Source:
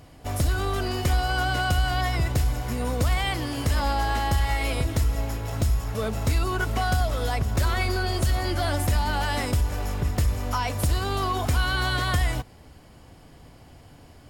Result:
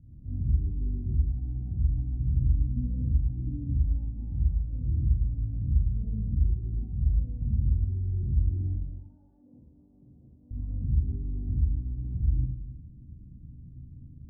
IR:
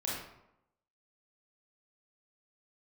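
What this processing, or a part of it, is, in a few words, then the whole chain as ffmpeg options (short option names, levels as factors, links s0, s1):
club heard from the street: -filter_complex "[0:a]asettb=1/sr,asplit=3[s0][s1][s2];[s0]atrim=end=8.734[s3];[s1]atrim=start=8.73:end=10.51,asetpts=PTS-STARTPTS,afade=t=in:d=0.004:c=qsin,afade=t=out:st=1.776:d=0.004:c=qsin,highpass=720[s4];[s2]atrim=start=10.506[s5];[s3][s4]acrossfade=d=0.004:c1=hsin:c2=qsin[s6];[s6][s5]acrossfade=d=0.004:c1=qsin:c2=hsin,bandreject=f=137.3:t=h:w=4,bandreject=f=274.6:t=h:w=4,bandreject=f=411.9:t=h:w=4,bandreject=f=549.2:t=h:w=4,bandreject=f=686.5:t=h:w=4,bandreject=f=823.8:t=h:w=4,bandreject=f=961.1:t=h:w=4,bandreject=f=1098.4:t=h:w=4,bandreject=f=1235.7:t=h:w=4,bandreject=f=1373:t=h:w=4,bandreject=f=1510.3:t=h:w=4,bandreject=f=1647.6:t=h:w=4,bandreject=f=1784.9:t=h:w=4,bandreject=f=1922.2:t=h:w=4,bandreject=f=2059.5:t=h:w=4,bandreject=f=2196.8:t=h:w=4,bandreject=f=2334.1:t=h:w=4,bandreject=f=2471.4:t=h:w=4,bandreject=f=2608.7:t=h:w=4,bandreject=f=2746:t=h:w=4,bandreject=f=2883.3:t=h:w=4,bandreject=f=3020.6:t=h:w=4,bandreject=f=3157.9:t=h:w=4,bandreject=f=3295.2:t=h:w=4,bandreject=f=3432.5:t=h:w=4,bandreject=f=3569.8:t=h:w=4,bandreject=f=3707.1:t=h:w=4,bandreject=f=3844.4:t=h:w=4,bandreject=f=3981.7:t=h:w=4,bandreject=f=4119:t=h:w=4,bandreject=f=4256.3:t=h:w=4,bandreject=f=4393.6:t=h:w=4,bandreject=f=4530.9:t=h:w=4,bandreject=f=4668.2:t=h:w=4,alimiter=limit=0.0668:level=0:latency=1,lowpass=f=210:w=0.5412,lowpass=f=210:w=1.3066[s7];[1:a]atrim=start_sample=2205[s8];[s7][s8]afir=irnorm=-1:irlink=0"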